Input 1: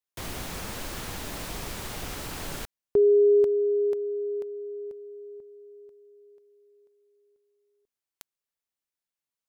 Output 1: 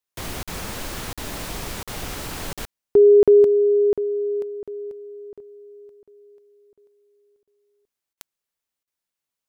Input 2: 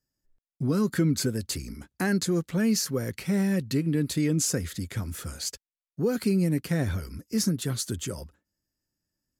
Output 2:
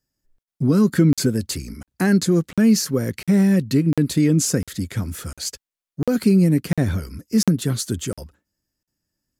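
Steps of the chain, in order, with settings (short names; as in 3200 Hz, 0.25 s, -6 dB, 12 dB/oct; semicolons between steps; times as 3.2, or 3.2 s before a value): dynamic EQ 220 Hz, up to +5 dB, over -35 dBFS, Q 0.72; crackling interface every 0.70 s, samples 2048, zero, from 0.43; gain +4.5 dB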